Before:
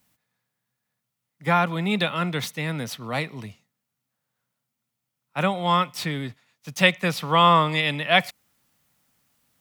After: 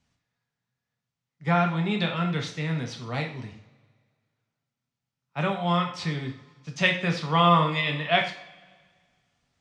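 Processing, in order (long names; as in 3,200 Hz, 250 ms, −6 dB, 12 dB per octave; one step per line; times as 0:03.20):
low-pass filter 6,700 Hz 24 dB per octave
low-shelf EQ 100 Hz +10 dB
coupled-rooms reverb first 0.46 s, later 1.8 s, from −20 dB, DRR 1.5 dB
level −6 dB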